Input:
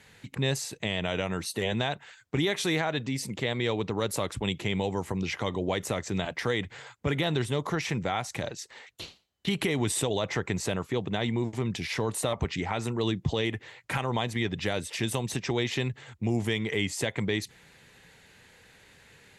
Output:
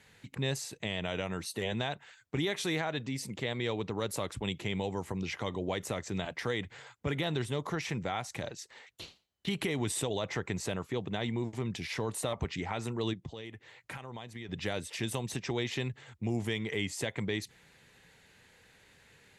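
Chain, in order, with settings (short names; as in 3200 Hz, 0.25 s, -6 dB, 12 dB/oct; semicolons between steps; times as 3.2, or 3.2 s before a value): 13.13–14.49 compressor 3:1, threshold -38 dBFS, peak gain reduction 12 dB; gain -5 dB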